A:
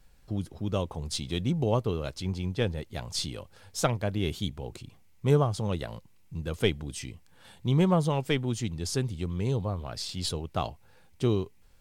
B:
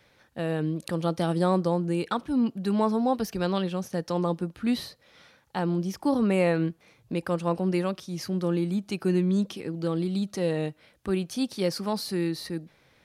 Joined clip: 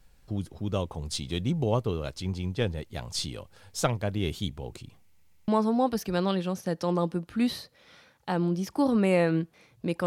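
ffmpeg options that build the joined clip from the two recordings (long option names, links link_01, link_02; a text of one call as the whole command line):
ffmpeg -i cue0.wav -i cue1.wav -filter_complex "[0:a]apad=whole_dur=10.06,atrim=end=10.06,asplit=3[link_01][link_02][link_03];[link_01]atrim=end=5.222[link_04];[link_02]atrim=start=5.088:end=5.222[link_05];[link_03]atrim=start=5.088:end=5.222[link_06];[1:a]atrim=start=2.748:end=7.33[link_07];[link_04][link_05]acrossfade=duration=0.004:curve1=hsin:curve2=hsin[link_08];[link_08][link_06]acrossfade=duration=0.004:curve1=hsin:curve2=hsin[link_09];[link_09][link_07]acrossfade=duration=0.004:curve1=hsin:curve2=hsin" out.wav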